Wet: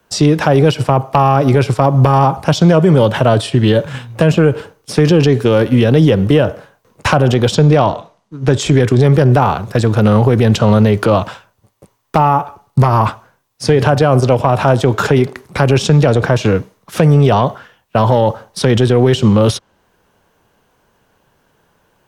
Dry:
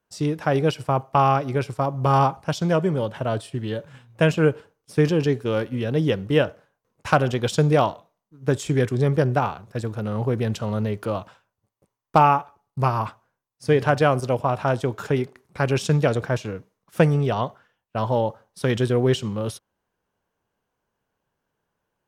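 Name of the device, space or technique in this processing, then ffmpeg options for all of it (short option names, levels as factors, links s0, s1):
mastering chain: -filter_complex "[0:a]equalizer=f=3600:t=o:w=0.77:g=2,acrossover=split=130|1200|7800[s0][s1][s2][s3];[s0]acompressor=threshold=0.0316:ratio=4[s4];[s1]acompressor=threshold=0.1:ratio=4[s5];[s2]acompressor=threshold=0.0141:ratio=4[s6];[s3]acompressor=threshold=0.001:ratio=4[s7];[s4][s5][s6][s7]amix=inputs=4:normalize=0,acompressor=threshold=0.0398:ratio=1.5,asoftclip=type=tanh:threshold=0.2,asoftclip=type=hard:threshold=0.141,alimiter=level_in=11.9:limit=0.891:release=50:level=0:latency=1,asettb=1/sr,asplit=3[s8][s9][s10];[s8]atrim=end=7.554[s11];[s9]atrim=start=7.55:end=8.61,asetpts=PTS-STARTPTS,afade=t=in:d=0.004:c=qsin,afade=t=out:st=1.056:d=0.004:c=qsin,lowpass=7400[s12];[s10]atrim=start=8.606[s13];[s11][s12]acrossfade=d=0.004:c1=hsin:c2=qsin[s14];[s14][s13]acrossfade=d=0.004:c1=qsin:c2=hsin,volume=0.891"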